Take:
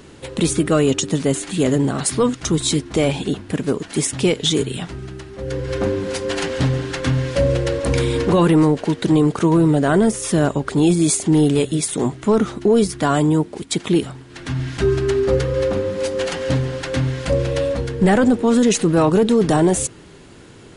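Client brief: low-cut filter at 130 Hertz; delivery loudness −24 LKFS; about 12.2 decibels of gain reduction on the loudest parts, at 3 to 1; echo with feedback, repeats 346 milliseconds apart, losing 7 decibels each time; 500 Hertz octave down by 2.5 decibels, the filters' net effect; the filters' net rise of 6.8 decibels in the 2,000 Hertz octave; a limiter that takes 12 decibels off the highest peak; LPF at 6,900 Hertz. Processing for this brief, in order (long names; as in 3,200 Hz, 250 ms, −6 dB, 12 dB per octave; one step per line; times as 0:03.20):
high-pass filter 130 Hz
low-pass filter 6,900 Hz
parametric band 500 Hz −3.5 dB
parametric band 2,000 Hz +9 dB
downward compressor 3 to 1, threshold −29 dBFS
brickwall limiter −22.5 dBFS
repeating echo 346 ms, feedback 45%, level −7 dB
level +7 dB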